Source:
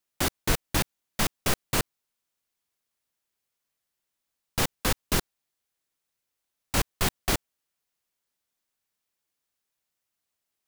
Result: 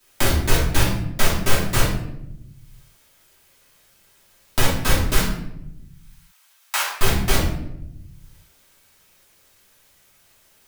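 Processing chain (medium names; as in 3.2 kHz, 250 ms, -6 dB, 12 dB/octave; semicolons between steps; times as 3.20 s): 5.16–6.92 s: high-pass 830 Hz 24 dB/octave; simulated room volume 100 m³, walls mixed, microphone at 2.8 m; three bands compressed up and down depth 70%; trim -4.5 dB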